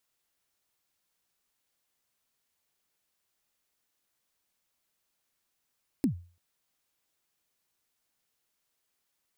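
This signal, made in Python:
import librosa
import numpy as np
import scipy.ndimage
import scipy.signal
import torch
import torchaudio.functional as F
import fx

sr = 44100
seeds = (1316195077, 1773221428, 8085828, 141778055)

y = fx.drum_kick(sr, seeds[0], length_s=0.34, level_db=-19.0, start_hz=310.0, end_hz=87.0, sweep_ms=103.0, decay_s=0.38, click=True)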